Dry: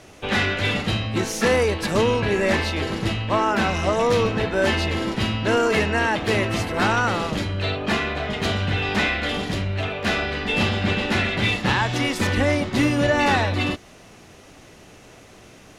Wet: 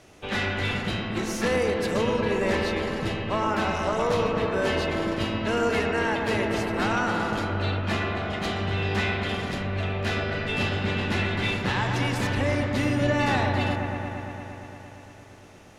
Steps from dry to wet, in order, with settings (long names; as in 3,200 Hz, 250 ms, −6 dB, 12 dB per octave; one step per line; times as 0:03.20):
delay with a low-pass on its return 115 ms, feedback 82%, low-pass 1,900 Hz, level −5 dB
level −6.5 dB